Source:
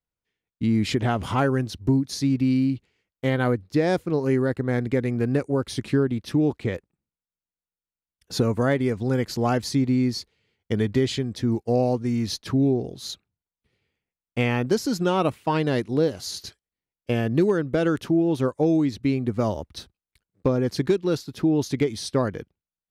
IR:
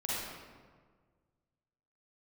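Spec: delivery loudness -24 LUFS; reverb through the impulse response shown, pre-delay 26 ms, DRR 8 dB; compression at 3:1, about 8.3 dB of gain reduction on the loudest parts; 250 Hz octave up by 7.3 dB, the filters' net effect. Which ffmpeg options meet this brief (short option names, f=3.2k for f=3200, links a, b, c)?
-filter_complex "[0:a]equalizer=f=250:t=o:g=8.5,acompressor=threshold=-22dB:ratio=3,asplit=2[a][b];[1:a]atrim=start_sample=2205,adelay=26[c];[b][c]afir=irnorm=-1:irlink=0,volume=-13.5dB[d];[a][d]amix=inputs=2:normalize=0,volume=1dB"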